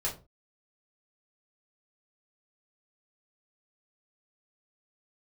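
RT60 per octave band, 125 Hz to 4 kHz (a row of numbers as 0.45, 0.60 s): 0.35, 0.35, 0.35, 0.30, 0.20, 0.20 s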